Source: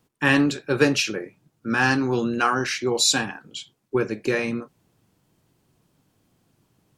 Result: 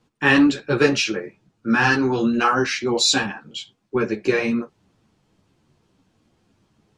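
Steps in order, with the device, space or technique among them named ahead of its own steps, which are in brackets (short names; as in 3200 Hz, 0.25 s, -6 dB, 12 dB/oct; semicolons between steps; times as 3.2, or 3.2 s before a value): string-machine ensemble chorus (ensemble effect; LPF 6200 Hz 12 dB/oct); gain +6 dB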